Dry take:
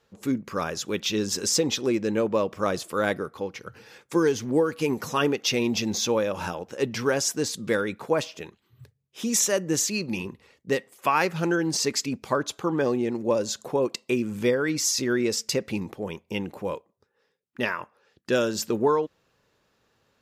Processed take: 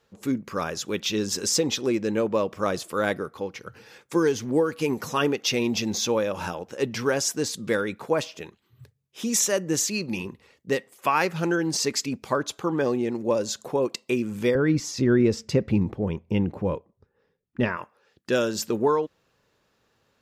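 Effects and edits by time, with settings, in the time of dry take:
0:14.55–0:17.77: RIAA equalisation playback

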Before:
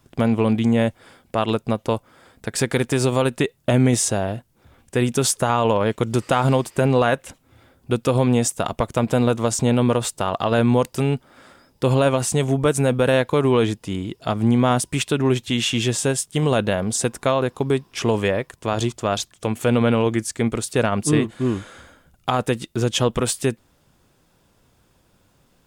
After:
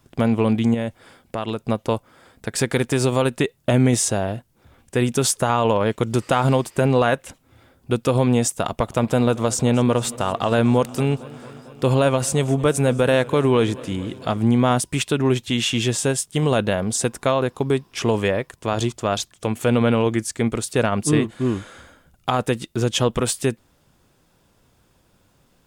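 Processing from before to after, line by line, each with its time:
0:00.74–0:01.69: downward compressor 2.5 to 1, threshold −23 dBFS
0:08.64–0:14.39: feedback echo with a swinging delay time 226 ms, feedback 74%, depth 77 cents, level −21 dB

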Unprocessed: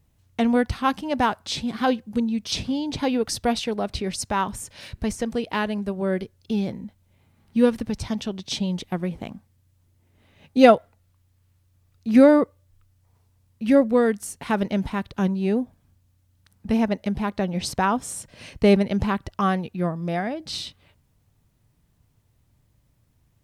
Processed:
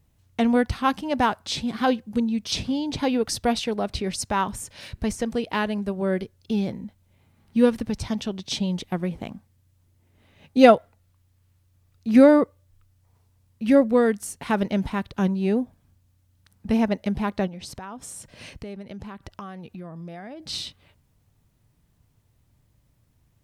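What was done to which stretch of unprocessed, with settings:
0:17.47–0:20.49: downward compressor, threshold −35 dBFS

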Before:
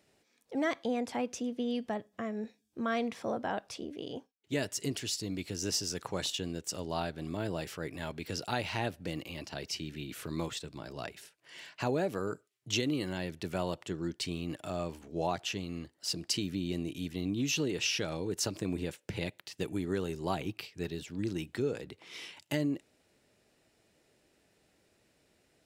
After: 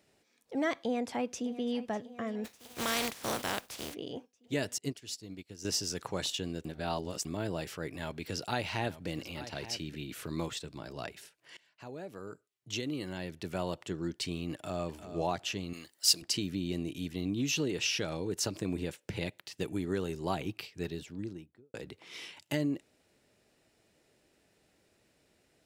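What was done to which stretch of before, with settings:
0:00.75–0:01.75: delay throw 600 ms, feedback 65%, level −16 dB
0:02.44–0:03.93: compressing power law on the bin magnitudes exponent 0.35
0:04.78–0:05.65: expander for the loud parts 2.5 to 1, over −47 dBFS
0:06.65–0:07.25: reverse
0:07.90–0:09.95: single-tap delay 879 ms −14 dB
0:11.57–0:13.89: fade in, from −23 dB
0:14.53–0:15.03: delay throw 350 ms, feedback 10%, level −11 dB
0:15.73–0:16.22: spectral tilt +4 dB per octave
0:20.83–0:21.74: fade out and dull

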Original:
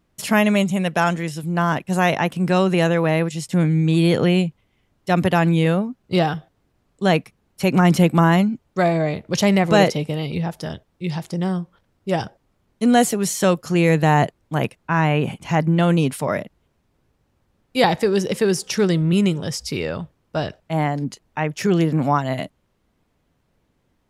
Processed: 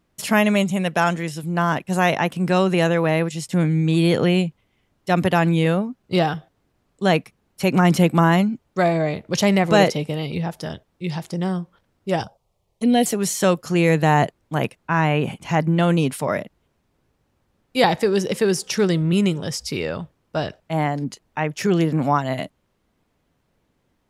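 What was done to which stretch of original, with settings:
0:12.23–0:13.06: phaser swept by the level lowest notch 250 Hz, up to 1,300 Hz, full sweep at −18 dBFS
whole clip: low-shelf EQ 140 Hz −3.5 dB

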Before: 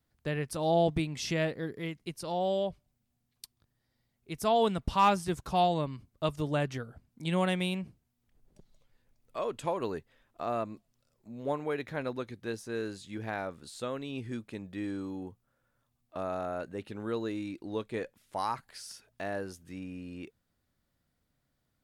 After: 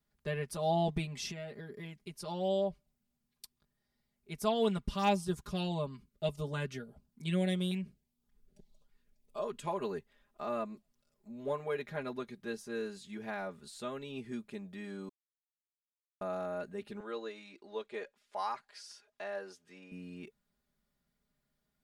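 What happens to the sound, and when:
0:01.27–0:02.18: downward compressor, threshold −36 dBFS
0:04.77–0:09.65: auto-filter notch saw up 1.7 Hz 530–2,500 Hz
0:15.09–0:16.21: silence
0:17.00–0:19.92: three-way crossover with the lows and the highs turned down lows −18 dB, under 340 Hz, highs −16 dB, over 7,700 Hz
whole clip: comb filter 4.9 ms, depth 93%; level −6 dB

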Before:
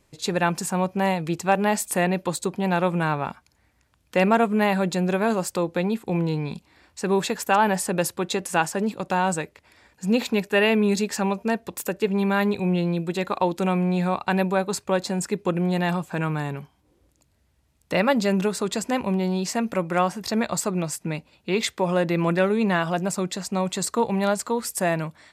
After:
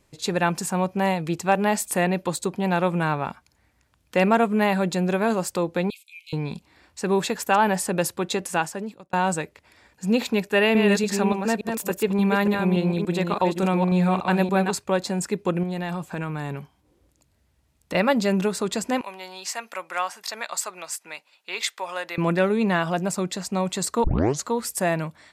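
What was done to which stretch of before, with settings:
0:05.90–0:06.33: Chebyshev high-pass filter 2,200 Hz, order 10
0:08.44–0:09.13: fade out
0:10.46–0:14.76: delay that plays each chunk backwards 288 ms, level −5 dB
0:15.63–0:17.95: downward compressor, threshold −25 dBFS
0:19.01–0:22.18: high-pass filter 960 Hz
0:24.04: tape start 0.41 s

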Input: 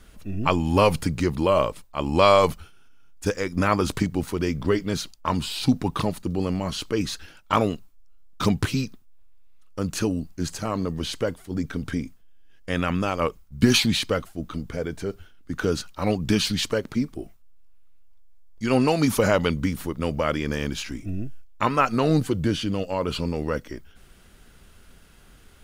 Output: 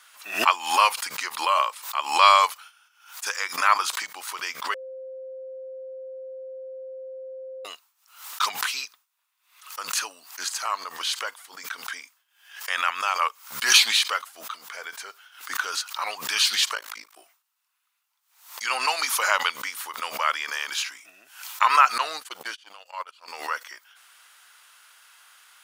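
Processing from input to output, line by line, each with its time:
0:04.74–0:07.65: beep over 524 Hz −19.5 dBFS
0:16.75–0:17.17: amplitude modulation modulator 53 Hz, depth 100%
0:21.98–0:23.28: noise gate −24 dBFS, range −49 dB
whole clip: Chebyshev high-pass filter 1,000 Hz, order 3; background raised ahead of every attack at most 110 dB per second; level +5.5 dB

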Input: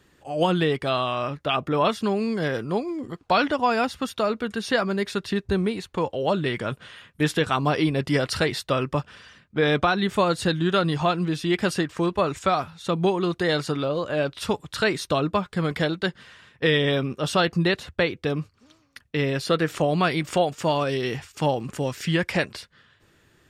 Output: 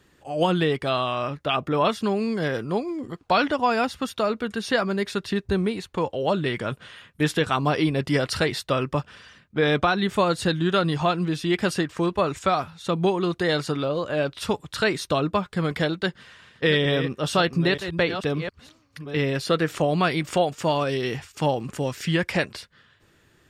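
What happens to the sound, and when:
0:15.93–0:19.62: delay that plays each chunk backwards 462 ms, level −10 dB

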